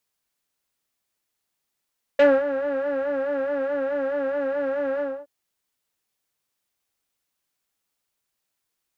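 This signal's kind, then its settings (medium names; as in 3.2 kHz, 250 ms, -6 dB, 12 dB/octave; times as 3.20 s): synth patch with vibrato C#5, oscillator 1 triangle, oscillator 2 saw, interval -12 st, detune 29 cents, oscillator 2 level -11.5 dB, noise -17 dB, filter lowpass, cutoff 980 Hz, Q 1.9, filter envelope 1.5 oct, filter decay 0.08 s, attack 5 ms, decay 0.24 s, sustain -12.5 dB, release 0.26 s, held 2.81 s, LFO 4.7 Hz, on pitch 70 cents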